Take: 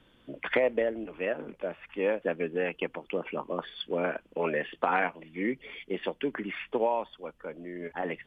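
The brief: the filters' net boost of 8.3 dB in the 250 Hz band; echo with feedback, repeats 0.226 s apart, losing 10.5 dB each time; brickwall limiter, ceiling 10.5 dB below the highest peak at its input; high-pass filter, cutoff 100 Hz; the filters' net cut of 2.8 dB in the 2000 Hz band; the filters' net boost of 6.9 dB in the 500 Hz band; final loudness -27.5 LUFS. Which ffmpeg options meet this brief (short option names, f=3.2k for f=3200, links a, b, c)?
-af "highpass=100,equalizer=f=250:t=o:g=8.5,equalizer=f=500:t=o:g=6,equalizer=f=2k:t=o:g=-4,alimiter=limit=-16dB:level=0:latency=1,aecho=1:1:226|452|678:0.299|0.0896|0.0269,volume=1dB"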